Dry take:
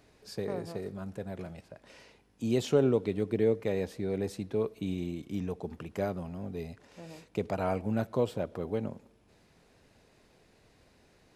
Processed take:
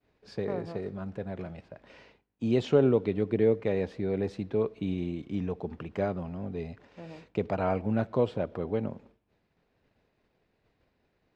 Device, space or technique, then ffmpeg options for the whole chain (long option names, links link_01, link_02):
hearing-loss simulation: -af "lowpass=3400,agate=range=-33dB:threshold=-54dB:ratio=3:detection=peak,volume=2.5dB"